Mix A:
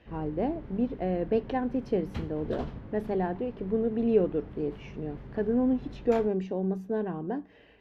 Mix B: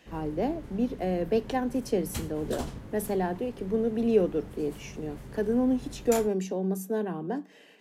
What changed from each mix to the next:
speech: add steep high-pass 150 Hz 96 dB/octave; master: remove distance through air 310 m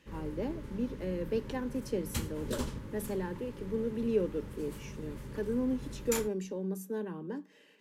speech -6.5 dB; master: add Butterworth band-stop 710 Hz, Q 3.8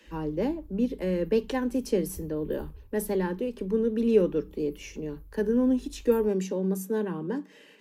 speech +8.0 dB; background: add inverse Chebyshev band-stop 300–4400 Hz, stop band 70 dB

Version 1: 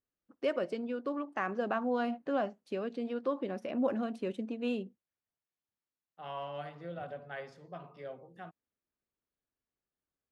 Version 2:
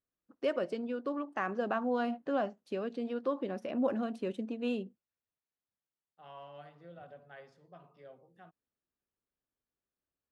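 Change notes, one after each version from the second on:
second voice -9.0 dB; master: add peaking EQ 2.2 kHz -2.5 dB 0.29 oct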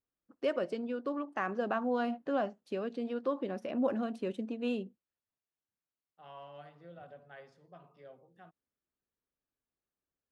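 no change

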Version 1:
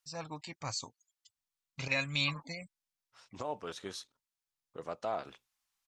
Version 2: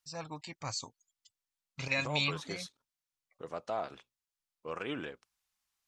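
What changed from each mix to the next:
second voice: entry -1.35 s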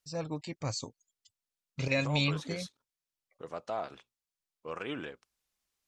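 first voice: add resonant low shelf 660 Hz +7.5 dB, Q 1.5

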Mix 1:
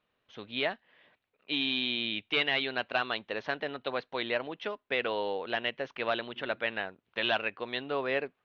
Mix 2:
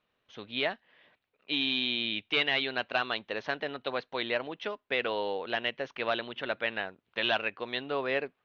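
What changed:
second voice -7.5 dB; master: remove distance through air 56 m

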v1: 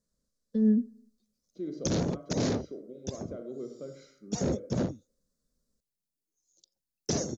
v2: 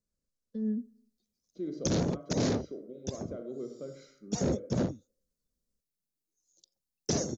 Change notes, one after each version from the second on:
first voice -8.5 dB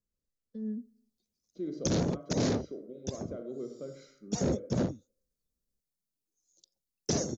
first voice -4.5 dB

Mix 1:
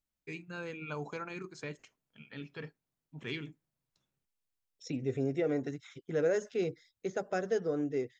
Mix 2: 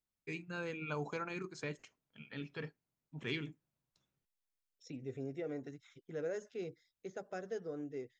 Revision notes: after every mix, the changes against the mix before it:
second voice -10.0 dB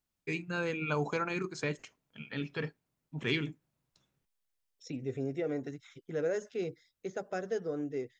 first voice +7.5 dB; second voice +7.0 dB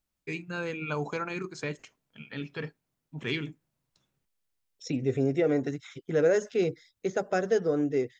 second voice +9.0 dB

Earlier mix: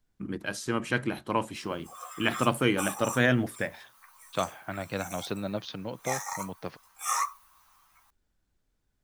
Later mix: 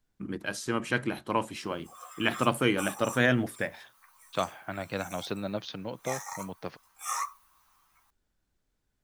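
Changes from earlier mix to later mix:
background -4.0 dB; master: add bass shelf 160 Hz -3 dB

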